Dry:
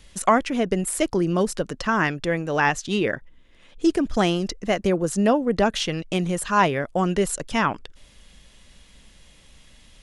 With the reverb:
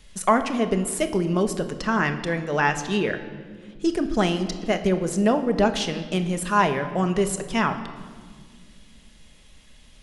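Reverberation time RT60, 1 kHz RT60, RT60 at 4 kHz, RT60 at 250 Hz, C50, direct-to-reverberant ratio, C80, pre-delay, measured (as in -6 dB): 1.8 s, 1.5 s, 1.3 s, 3.0 s, 11.0 dB, 7.0 dB, 12.5 dB, 5 ms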